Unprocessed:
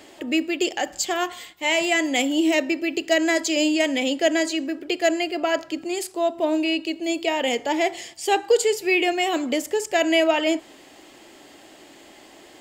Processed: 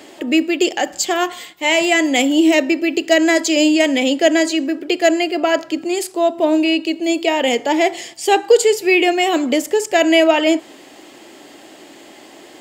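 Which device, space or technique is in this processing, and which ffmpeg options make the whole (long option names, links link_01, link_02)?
filter by subtraction: -filter_complex "[0:a]asplit=2[link_01][link_02];[link_02]lowpass=240,volume=-1[link_03];[link_01][link_03]amix=inputs=2:normalize=0,volume=5.5dB"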